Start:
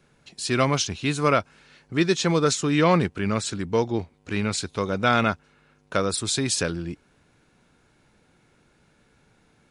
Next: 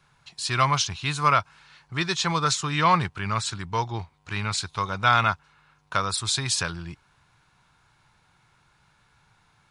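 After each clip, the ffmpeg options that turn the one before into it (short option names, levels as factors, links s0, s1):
-af "equalizer=f=125:t=o:w=1:g=5,equalizer=f=250:t=o:w=1:g=-11,equalizer=f=500:t=o:w=1:g=-9,equalizer=f=1000:t=o:w=1:g=10,equalizer=f=4000:t=o:w=1:g=4,volume=0.794"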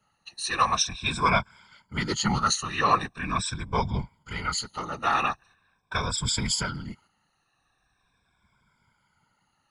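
-af "afftfilt=real='re*pow(10,21/40*sin(2*PI*(1.7*log(max(b,1)*sr/1024/100)/log(2)-(-0.42)*(pts-256)/sr)))':imag='im*pow(10,21/40*sin(2*PI*(1.7*log(max(b,1)*sr/1024/100)/log(2)-(-0.42)*(pts-256)/sr)))':win_size=1024:overlap=0.75,afftfilt=real='hypot(re,im)*cos(2*PI*random(0))':imag='hypot(re,im)*sin(2*PI*random(1))':win_size=512:overlap=0.75,agate=range=0.501:threshold=0.002:ratio=16:detection=peak"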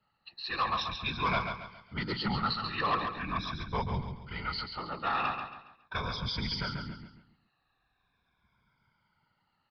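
-af "aresample=11025,asoftclip=type=tanh:threshold=0.15,aresample=44100,aecho=1:1:138|276|414|552:0.473|0.175|0.0648|0.024,volume=0.531"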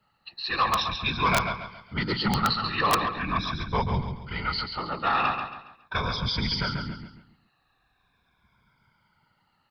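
-af "aeval=exprs='(mod(11.2*val(0)+1,2)-1)/11.2':c=same,volume=2.11"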